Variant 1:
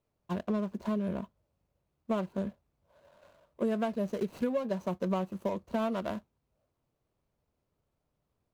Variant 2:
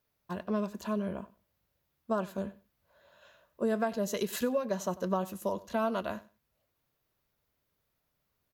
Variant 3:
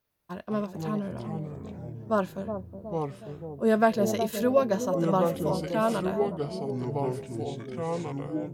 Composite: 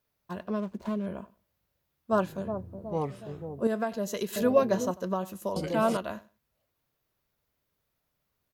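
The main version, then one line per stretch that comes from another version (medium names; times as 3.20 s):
2
0.60–1.06 s: from 1
2.12–3.67 s: from 3
4.36–4.91 s: from 3
5.56–5.97 s: from 3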